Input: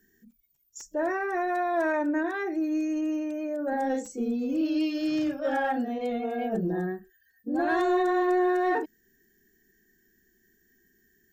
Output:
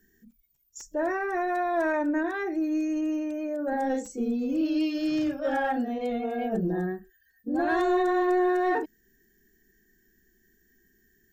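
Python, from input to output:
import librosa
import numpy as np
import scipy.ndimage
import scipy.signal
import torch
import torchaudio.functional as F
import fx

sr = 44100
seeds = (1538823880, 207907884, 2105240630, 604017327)

y = fx.low_shelf(x, sr, hz=76.0, db=8.5)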